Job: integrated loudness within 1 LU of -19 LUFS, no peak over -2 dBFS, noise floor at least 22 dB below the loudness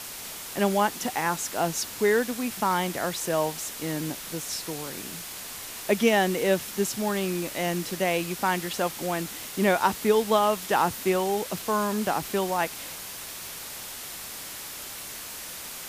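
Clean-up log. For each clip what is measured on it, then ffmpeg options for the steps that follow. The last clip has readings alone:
noise floor -39 dBFS; noise floor target -50 dBFS; loudness -27.5 LUFS; peak level -8.0 dBFS; loudness target -19.0 LUFS
-> -af "afftdn=nr=11:nf=-39"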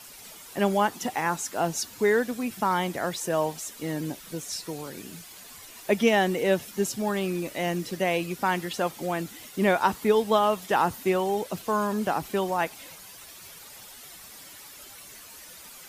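noise floor -46 dBFS; noise floor target -49 dBFS
-> -af "afftdn=nr=6:nf=-46"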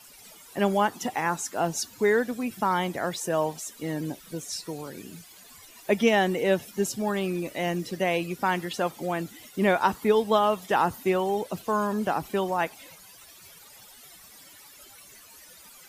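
noise floor -51 dBFS; loudness -27.0 LUFS; peak level -8.5 dBFS; loudness target -19.0 LUFS
-> -af "volume=2.51,alimiter=limit=0.794:level=0:latency=1"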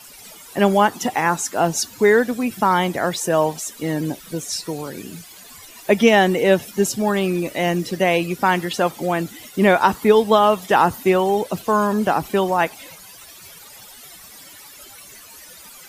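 loudness -19.0 LUFS; peak level -2.0 dBFS; noise floor -43 dBFS

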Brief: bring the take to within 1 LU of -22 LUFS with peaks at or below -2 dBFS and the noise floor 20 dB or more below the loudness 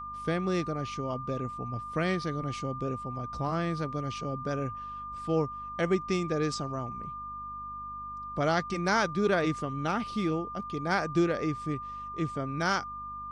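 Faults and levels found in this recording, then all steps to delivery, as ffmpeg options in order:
hum 50 Hz; highest harmonic 250 Hz; hum level -50 dBFS; steady tone 1.2 kHz; tone level -37 dBFS; loudness -31.5 LUFS; peak level -13.5 dBFS; loudness target -22.0 LUFS
-> -af "bandreject=f=50:t=h:w=4,bandreject=f=100:t=h:w=4,bandreject=f=150:t=h:w=4,bandreject=f=200:t=h:w=4,bandreject=f=250:t=h:w=4"
-af "bandreject=f=1200:w=30"
-af "volume=2.99"

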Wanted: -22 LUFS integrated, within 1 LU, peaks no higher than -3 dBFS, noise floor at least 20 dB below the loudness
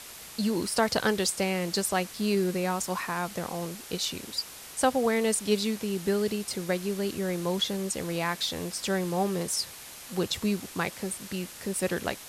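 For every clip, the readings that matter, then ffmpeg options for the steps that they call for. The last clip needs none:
noise floor -45 dBFS; noise floor target -49 dBFS; loudness -29.0 LUFS; peak level -11.0 dBFS; loudness target -22.0 LUFS
-> -af "afftdn=nr=6:nf=-45"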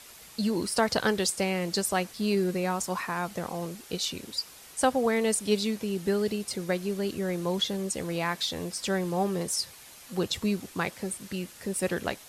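noise floor -50 dBFS; loudness -29.5 LUFS; peak level -11.0 dBFS; loudness target -22.0 LUFS
-> -af "volume=2.37"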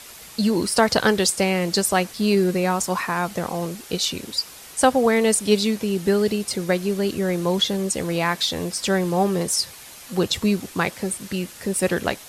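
loudness -22.0 LUFS; peak level -3.5 dBFS; noise floor -42 dBFS

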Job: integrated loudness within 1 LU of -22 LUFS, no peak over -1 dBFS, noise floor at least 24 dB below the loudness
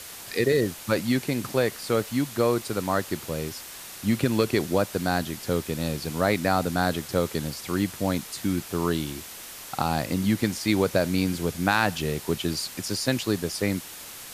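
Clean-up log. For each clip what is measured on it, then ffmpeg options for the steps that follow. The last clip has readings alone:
noise floor -41 dBFS; noise floor target -51 dBFS; loudness -26.5 LUFS; peak level -8.0 dBFS; loudness target -22.0 LUFS
-> -af "afftdn=nr=10:nf=-41"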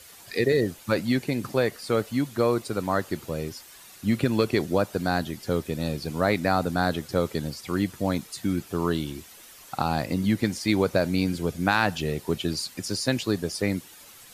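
noise floor -49 dBFS; noise floor target -51 dBFS
-> -af "afftdn=nr=6:nf=-49"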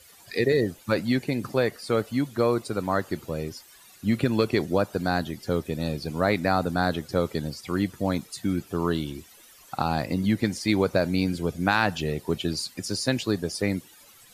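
noise floor -53 dBFS; loudness -26.5 LUFS; peak level -8.5 dBFS; loudness target -22.0 LUFS
-> -af "volume=1.68"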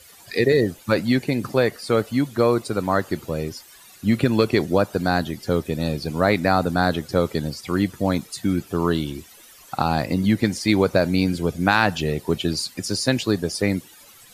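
loudness -22.0 LUFS; peak level -4.0 dBFS; noise floor -48 dBFS

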